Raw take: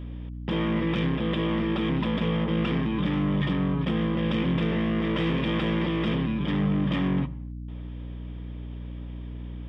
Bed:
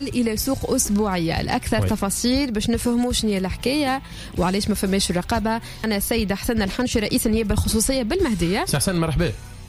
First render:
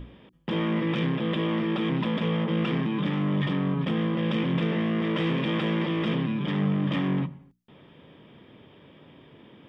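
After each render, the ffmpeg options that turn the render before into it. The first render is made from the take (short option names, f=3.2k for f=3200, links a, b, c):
-af "bandreject=f=60:t=h:w=6,bandreject=f=120:t=h:w=6,bandreject=f=180:t=h:w=6,bandreject=f=240:t=h:w=6,bandreject=f=300:t=h:w=6,bandreject=f=360:t=h:w=6"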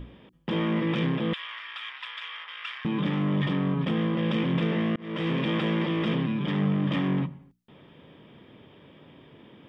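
-filter_complex "[0:a]asettb=1/sr,asplit=3[a][b][c];[a]atrim=end=1.334[d];[b]atrim=start=1.33:end=2.85,asetpts=PTS-STARTPTS,afade=t=in:d=0.004:c=qsin,afade=t=out:st=1.516:d=0.004:c=qsin,highpass=f=1.3k:w=0.5412,highpass=f=1.3k:w=1.3066[e];[c]atrim=start=2.846[f];[d][e]acrossfade=d=0.004:c1=hsin:c2=qsin[g];[g][f]acrossfade=d=0.004:c1=qsin:c2=hsin,asplit=2[h][i];[h]atrim=end=4.96,asetpts=PTS-STARTPTS,afade=t=out:st=4.956:d=0.004:c=hsin[j];[i]atrim=start=4.96,asetpts=PTS-STARTPTS,afade=t=in:d=0.51:c=qsin[k];[j][k]concat=n=2:v=0:a=1"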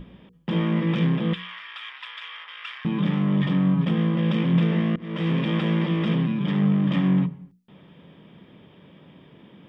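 -af "equalizer=f=180:t=o:w=0.3:g=11.5,bandreject=f=60:t=h:w=6,bandreject=f=120:t=h:w=6,bandreject=f=180:t=h:w=6,bandreject=f=240:t=h:w=6,bandreject=f=300:t=h:w=6,bandreject=f=360:t=h:w=6,bandreject=f=420:t=h:w=6,bandreject=f=480:t=h:w=6"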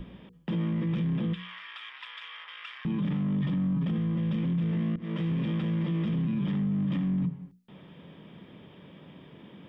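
-filter_complex "[0:a]acrossover=split=270[a][b];[b]acompressor=threshold=-42dB:ratio=2.5[c];[a][c]amix=inputs=2:normalize=0,alimiter=limit=-23dB:level=0:latency=1:release=11"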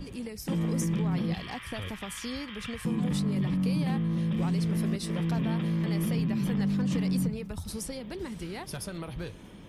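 -filter_complex "[1:a]volume=-17dB[a];[0:a][a]amix=inputs=2:normalize=0"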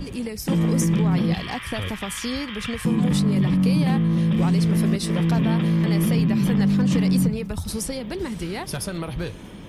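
-af "volume=8.5dB"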